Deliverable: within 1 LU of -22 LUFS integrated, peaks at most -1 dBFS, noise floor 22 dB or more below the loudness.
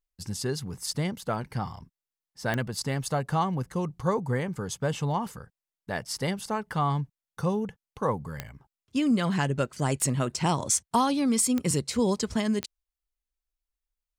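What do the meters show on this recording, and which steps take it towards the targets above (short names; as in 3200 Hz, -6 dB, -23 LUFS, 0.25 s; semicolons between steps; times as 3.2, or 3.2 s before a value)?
clicks 5; loudness -28.5 LUFS; peak -10.5 dBFS; loudness target -22.0 LUFS
-> de-click; gain +6.5 dB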